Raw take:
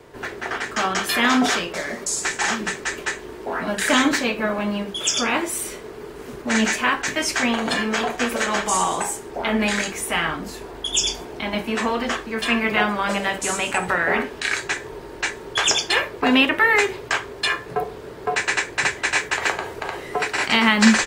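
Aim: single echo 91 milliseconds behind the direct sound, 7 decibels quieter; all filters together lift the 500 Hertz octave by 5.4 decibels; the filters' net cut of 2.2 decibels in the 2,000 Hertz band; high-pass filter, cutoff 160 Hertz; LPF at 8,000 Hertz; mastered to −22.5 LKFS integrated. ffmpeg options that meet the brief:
ffmpeg -i in.wav -af "highpass=160,lowpass=8000,equalizer=frequency=500:width_type=o:gain=7,equalizer=frequency=2000:width_type=o:gain=-3,aecho=1:1:91:0.447,volume=-2dB" out.wav

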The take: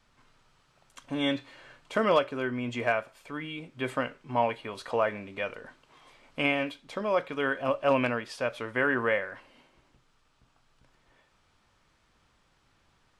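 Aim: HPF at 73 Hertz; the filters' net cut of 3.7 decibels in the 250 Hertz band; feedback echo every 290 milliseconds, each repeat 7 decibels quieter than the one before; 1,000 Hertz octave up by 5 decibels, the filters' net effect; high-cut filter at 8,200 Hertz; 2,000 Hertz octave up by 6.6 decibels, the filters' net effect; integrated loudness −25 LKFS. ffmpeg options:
ffmpeg -i in.wav -af "highpass=73,lowpass=8200,equalizer=frequency=250:width_type=o:gain=-4.5,equalizer=frequency=1000:width_type=o:gain=4.5,equalizer=frequency=2000:width_type=o:gain=7,aecho=1:1:290|580|870|1160|1450:0.447|0.201|0.0905|0.0407|0.0183,volume=1dB" out.wav

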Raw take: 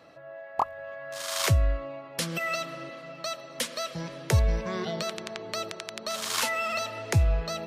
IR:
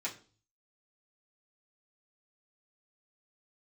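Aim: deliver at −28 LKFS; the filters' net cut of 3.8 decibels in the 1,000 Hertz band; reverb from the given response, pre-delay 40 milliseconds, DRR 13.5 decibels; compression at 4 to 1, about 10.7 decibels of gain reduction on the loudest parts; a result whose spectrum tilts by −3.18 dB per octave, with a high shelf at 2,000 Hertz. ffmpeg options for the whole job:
-filter_complex "[0:a]equalizer=frequency=1000:width_type=o:gain=-8,highshelf=frequency=2000:gain=8,acompressor=threshold=-31dB:ratio=4,asplit=2[link_01][link_02];[1:a]atrim=start_sample=2205,adelay=40[link_03];[link_02][link_03]afir=irnorm=-1:irlink=0,volume=-16dB[link_04];[link_01][link_04]amix=inputs=2:normalize=0,volume=6dB"

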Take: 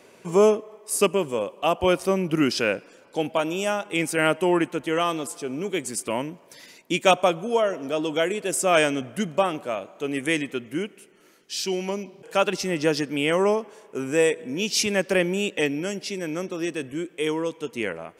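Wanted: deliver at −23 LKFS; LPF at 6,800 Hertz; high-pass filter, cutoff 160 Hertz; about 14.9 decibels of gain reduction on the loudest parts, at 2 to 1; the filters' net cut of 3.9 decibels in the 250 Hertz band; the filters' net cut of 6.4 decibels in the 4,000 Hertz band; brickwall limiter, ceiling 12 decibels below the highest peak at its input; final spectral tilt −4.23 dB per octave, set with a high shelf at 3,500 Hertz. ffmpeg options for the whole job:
ffmpeg -i in.wav -af "highpass=160,lowpass=6800,equalizer=frequency=250:width_type=o:gain=-5,highshelf=frequency=3500:gain=-5.5,equalizer=frequency=4000:width_type=o:gain=-5,acompressor=threshold=-43dB:ratio=2,volume=19.5dB,alimiter=limit=-12dB:level=0:latency=1" out.wav

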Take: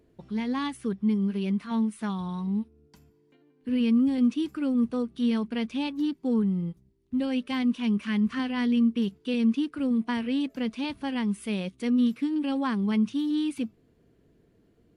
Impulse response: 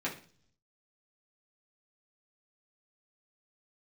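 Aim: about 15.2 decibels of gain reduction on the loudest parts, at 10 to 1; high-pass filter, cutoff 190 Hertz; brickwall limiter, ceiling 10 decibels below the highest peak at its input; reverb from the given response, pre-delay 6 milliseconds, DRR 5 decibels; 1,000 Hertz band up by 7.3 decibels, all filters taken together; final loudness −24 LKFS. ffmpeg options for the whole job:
-filter_complex "[0:a]highpass=190,equalizer=frequency=1000:width_type=o:gain=8.5,acompressor=threshold=-36dB:ratio=10,alimiter=level_in=12dB:limit=-24dB:level=0:latency=1,volume=-12dB,asplit=2[link_01][link_02];[1:a]atrim=start_sample=2205,adelay=6[link_03];[link_02][link_03]afir=irnorm=-1:irlink=0,volume=-10.5dB[link_04];[link_01][link_04]amix=inputs=2:normalize=0,volume=17.5dB"

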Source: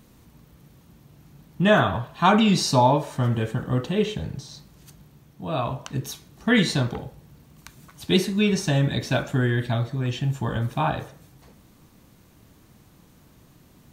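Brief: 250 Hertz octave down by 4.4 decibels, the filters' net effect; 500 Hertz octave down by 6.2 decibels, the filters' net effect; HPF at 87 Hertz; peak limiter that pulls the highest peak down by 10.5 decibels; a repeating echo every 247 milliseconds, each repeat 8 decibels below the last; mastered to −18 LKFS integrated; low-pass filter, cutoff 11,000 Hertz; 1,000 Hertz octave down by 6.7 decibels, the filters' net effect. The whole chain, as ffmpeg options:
ffmpeg -i in.wav -af "highpass=87,lowpass=11000,equalizer=frequency=250:width_type=o:gain=-4.5,equalizer=frequency=500:width_type=o:gain=-5,equalizer=frequency=1000:width_type=o:gain=-6.5,alimiter=limit=-19.5dB:level=0:latency=1,aecho=1:1:247|494|741|988|1235:0.398|0.159|0.0637|0.0255|0.0102,volume=11.5dB" out.wav

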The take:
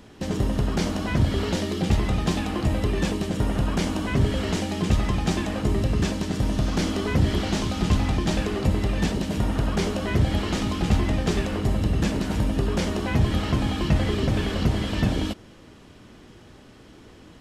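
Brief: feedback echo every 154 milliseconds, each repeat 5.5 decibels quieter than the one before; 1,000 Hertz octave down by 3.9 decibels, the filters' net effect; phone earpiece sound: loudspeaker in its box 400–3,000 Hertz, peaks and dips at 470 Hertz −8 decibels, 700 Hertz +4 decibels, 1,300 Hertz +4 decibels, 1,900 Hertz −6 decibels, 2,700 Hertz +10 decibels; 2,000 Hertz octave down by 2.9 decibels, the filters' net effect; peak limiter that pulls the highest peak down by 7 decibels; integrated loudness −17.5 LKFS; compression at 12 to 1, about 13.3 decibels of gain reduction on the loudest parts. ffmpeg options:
ffmpeg -i in.wav -af "equalizer=frequency=1000:width_type=o:gain=-6.5,equalizer=frequency=2000:width_type=o:gain=-5,acompressor=threshold=-29dB:ratio=12,alimiter=level_in=2dB:limit=-24dB:level=0:latency=1,volume=-2dB,highpass=400,equalizer=frequency=470:width_type=q:width=4:gain=-8,equalizer=frequency=700:width_type=q:width=4:gain=4,equalizer=frequency=1300:width_type=q:width=4:gain=4,equalizer=frequency=1900:width_type=q:width=4:gain=-6,equalizer=frequency=2700:width_type=q:width=4:gain=10,lowpass=frequency=3000:width=0.5412,lowpass=frequency=3000:width=1.3066,aecho=1:1:154|308|462|616|770|924|1078:0.531|0.281|0.149|0.079|0.0419|0.0222|0.0118,volume=24.5dB" out.wav

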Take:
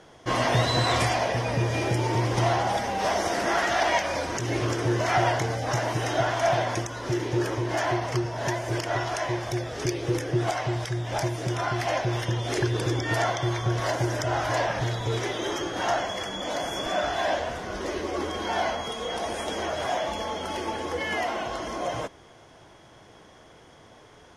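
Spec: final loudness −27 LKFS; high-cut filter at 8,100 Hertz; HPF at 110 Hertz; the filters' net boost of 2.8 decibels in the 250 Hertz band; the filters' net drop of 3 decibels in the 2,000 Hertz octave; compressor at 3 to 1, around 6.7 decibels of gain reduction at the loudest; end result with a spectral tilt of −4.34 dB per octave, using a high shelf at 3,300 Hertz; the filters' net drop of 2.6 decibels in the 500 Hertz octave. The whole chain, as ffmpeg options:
ffmpeg -i in.wav -af "highpass=110,lowpass=8100,equalizer=frequency=250:width_type=o:gain=8,equalizer=frequency=500:width_type=o:gain=-6.5,equalizer=frequency=2000:width_type=o:gain=-5,highshelf=frequency=3300:gain=5.5,acompressor=threshold=-29dB:ratio=3,volume=5dB" out.wav

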